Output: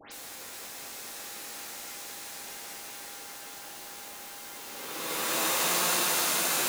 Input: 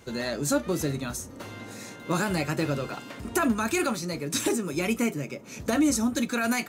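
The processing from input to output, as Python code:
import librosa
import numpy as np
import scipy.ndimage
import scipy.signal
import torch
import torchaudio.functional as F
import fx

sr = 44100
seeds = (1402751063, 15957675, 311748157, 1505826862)

p1 = fx.spec_flatten(x, sr, power=0.23)
p2 = scipy.signal.sosfilt(scipy.signal.butter(2, 260.0, 'highpass', fs=sr, output='sos'), p1)
p3 = fx.paulstretch(p2, sr, seeds[0], factor=14.0, window_s=0.1, from_s=1.73)
p4 = p3 + 10.0 ** (-55.0 / 20.0) * np.sin(2.0 * np.pi * 810.0 * np.arange(len(p3)) / sr)
p5 = fx.quant_dither(p4, sr, seeds[1], bits=6, dither='triangular')
p6 = p4 + (p5 * 10.0 ** (-9.5 / 20.0))
p7 = fx.dispersion(p6, sr, late='highs', ms=120.0, hz=2500.0)
p8 = p7 + fx.echo_alternate(p7, sr, ms=213, hz=2300.0, feedback_pct=81, wet_db=-4, dry=0)
y = p8 * 10.0 ** (-5.5 / 20.0)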